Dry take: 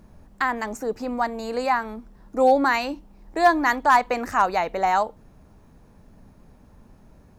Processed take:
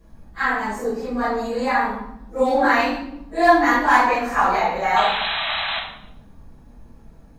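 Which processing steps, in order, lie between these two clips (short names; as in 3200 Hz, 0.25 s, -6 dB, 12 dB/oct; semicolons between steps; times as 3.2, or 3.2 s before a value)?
phase scrambler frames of 0.1 s; dynamic EQ 2000 Hz, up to +4 dB, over -31 dBFS, Q 0.91; painted sound noise, 4.96–5.79, 570–4100 Hz -26 dBFS; reverb RT60 0.85 s, pre-delay 4 ms, DRR -5 dB; gain -7 dB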